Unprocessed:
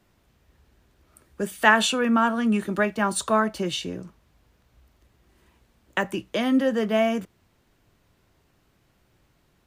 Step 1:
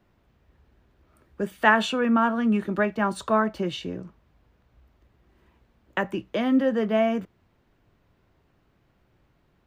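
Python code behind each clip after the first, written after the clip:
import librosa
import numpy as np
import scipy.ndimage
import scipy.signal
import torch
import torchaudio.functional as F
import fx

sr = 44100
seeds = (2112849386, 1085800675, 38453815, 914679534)

y = fx.peak_eq(x, sr, hz=10000.0, db=-15.0, octaves=2.0)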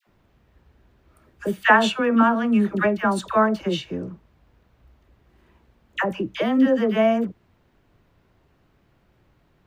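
y = fx.dispersion(x, sr, late='lows', ms=72.0, hz=940.0)
y = F.gain(torch.from_numpy(y), 3.5).numpy()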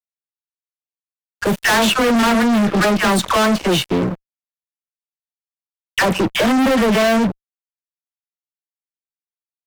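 y = fx.fuzz(x, sr, gain_db=32.0, gate_db=-40.0)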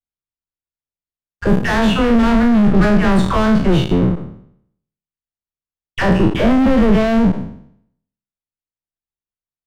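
y = fx.spec_trails(x, sr, decay_s=0.66)
y = fx.riaa(y, sr, side='playback')
y = F.gain(torch.from_numpy(y), -4.5).numpy()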